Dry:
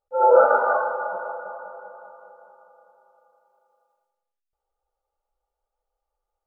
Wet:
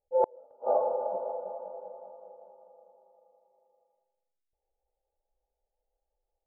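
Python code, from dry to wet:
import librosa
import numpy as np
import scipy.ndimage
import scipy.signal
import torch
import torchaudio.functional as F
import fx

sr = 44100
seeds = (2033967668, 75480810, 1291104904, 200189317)

y = scipy.signal.sosfilt(scipy.signal.cheby2(4, 40, 1500.0, 'lowpass', fs=sr, output='sos'), x)
y = fx.gate_flip(y, sr, shuts_db=-13.0, range_db=-37)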